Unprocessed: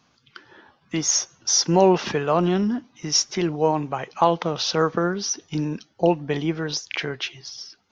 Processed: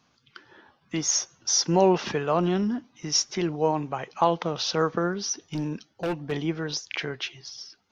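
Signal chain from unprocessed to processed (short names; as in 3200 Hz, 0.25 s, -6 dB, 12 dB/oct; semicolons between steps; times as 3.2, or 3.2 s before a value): 5.45–6.32 overloaded stage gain 20.5 dB; gain -3.5 dB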